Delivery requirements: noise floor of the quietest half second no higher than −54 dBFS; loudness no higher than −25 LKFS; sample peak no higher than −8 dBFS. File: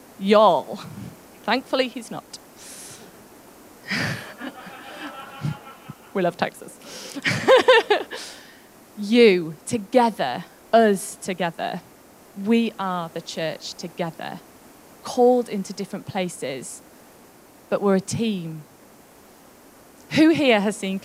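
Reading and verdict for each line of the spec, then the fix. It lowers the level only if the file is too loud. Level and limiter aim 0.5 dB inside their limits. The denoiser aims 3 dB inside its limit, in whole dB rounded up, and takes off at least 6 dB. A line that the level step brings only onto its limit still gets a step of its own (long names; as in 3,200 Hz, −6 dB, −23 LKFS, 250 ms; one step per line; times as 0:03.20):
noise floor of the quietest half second −50 dBFS: out of spec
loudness −21.5 LKFS: out of spec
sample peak −4.0 dBFS: out of spec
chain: broadband denoise 6 dB, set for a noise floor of −50 dBFS
level −4 dB
brickwall limiter −8.5 dBFS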